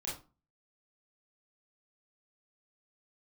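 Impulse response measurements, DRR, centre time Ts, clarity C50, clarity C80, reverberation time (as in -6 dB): -6.0 dB, 36 ms, 5.5 dB, 12.5 dB, 0.35 s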